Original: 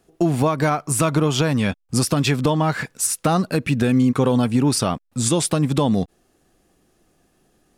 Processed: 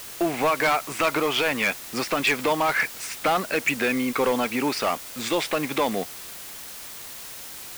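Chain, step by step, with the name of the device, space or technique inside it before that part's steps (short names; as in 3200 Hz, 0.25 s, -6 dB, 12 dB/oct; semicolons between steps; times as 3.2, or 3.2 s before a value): drive-through speaker (BPF 460–3400 Hz; bell 2200 Hz +10.5 dB 0.59 oct; hard clip -18 dBFS, distortion -11 dB; white noise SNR 13 dB); gain +1.5 dB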